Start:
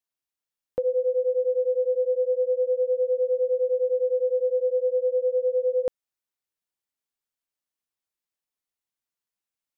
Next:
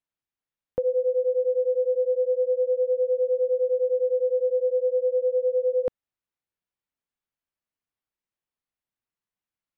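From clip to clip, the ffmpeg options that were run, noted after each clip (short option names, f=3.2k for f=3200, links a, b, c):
-af "bass=f=250:g=5,treble=f=4k:g=-12"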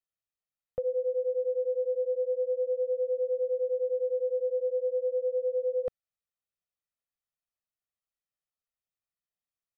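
-af "aecho=1:1:1.6:0.65,volume=-8.5dB"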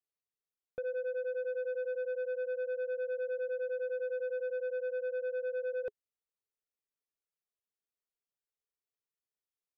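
-af "equalizer=f=420:t=o:w=0.47:g=12.5,asoftclip=type=tanh:threshold=-24.5dB,volume=-7.5dB"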